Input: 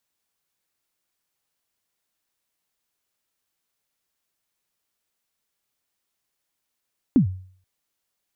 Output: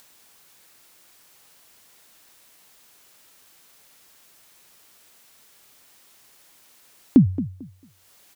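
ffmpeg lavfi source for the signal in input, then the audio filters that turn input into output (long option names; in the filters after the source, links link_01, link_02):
-f lavfi -i "aevalsrc='0.335*pow(10,-3*t/0.51)*sin(2*PI*(300*0.105/log(93/300)*(exp(log(93/300)*min(t,0.105)/0.105)-1)+93*max(t-0.105,0)))':duration=0.48:sample_rate=44100"
-filter_complex "[0:a]lowshelf=frequency=110:gain=-6.5,asplit=2[link_01][link_02];[link_02]acompressor=mode=upward:threshold=-36dB:ratio=2.5,volume=0.5dB[link_03];[link_01][link_03]amix=inputs=2:normalize=0,asplit=2[link_04][link_05];[link_05]adelay=223,lowpass=frequency=1300:poles=1,volume=-13.5dB,asplit=2[link_06][link_07];[link_07]adelay=223,lowpass=frequency=1300:poles=1,volume=0.22,asplit=2[link_08][link_09];[link_09]adelay=223,lowpass=frequency=1300:poles=1,volume=0.22[link_10];[link_04][link_06][link_08][link_10]amix=inputs=4:normalize=0"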